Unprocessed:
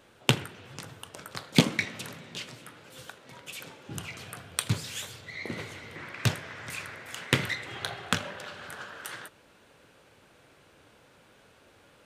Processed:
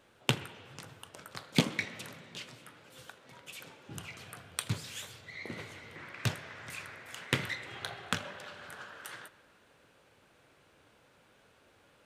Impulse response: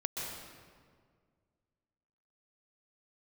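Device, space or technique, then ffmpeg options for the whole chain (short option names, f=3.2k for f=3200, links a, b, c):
filtered reverb send: -filter_complex "[0:a]asplit=2[a][b];[b]highpass=470,lowpass=4k[c];[1:a]atrim=start_sample=2205[d];[c][d]afir=irnorm=-1:irlink=0,volume=-17dB[e];[a][e]amix=inputs=2:normalize=0,volume=-6dB"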